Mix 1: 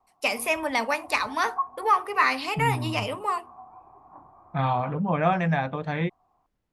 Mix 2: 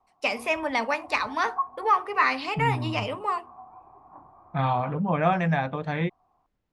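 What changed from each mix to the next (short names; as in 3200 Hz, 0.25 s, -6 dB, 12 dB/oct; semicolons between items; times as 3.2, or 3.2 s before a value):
first voice: add air absorption 79 m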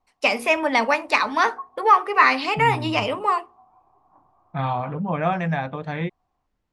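first voice +6.5 dB; background -8.5 dB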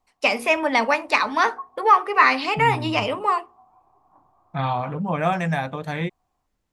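second voice: remove air absorption 180 m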